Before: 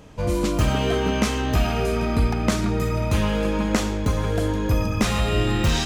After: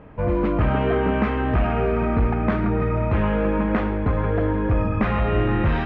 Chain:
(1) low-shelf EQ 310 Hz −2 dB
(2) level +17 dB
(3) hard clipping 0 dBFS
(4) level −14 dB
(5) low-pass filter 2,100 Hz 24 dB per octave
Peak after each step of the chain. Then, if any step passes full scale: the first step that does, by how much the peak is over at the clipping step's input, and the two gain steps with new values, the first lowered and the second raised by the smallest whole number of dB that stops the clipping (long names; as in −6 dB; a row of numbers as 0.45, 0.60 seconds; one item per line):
−9.0, +8.0, 0.0, −14.0, −12.5 dBFS
step 2, 8.0 dB
step 2 +9 dB, step 4 −6 dB